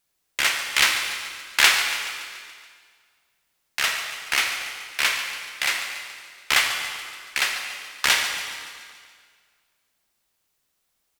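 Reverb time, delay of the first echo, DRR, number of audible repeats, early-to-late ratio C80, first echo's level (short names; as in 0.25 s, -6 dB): 1.9 s, 0.142 s, 3.5 dB, 6, 5.0 dB, -12.5 dB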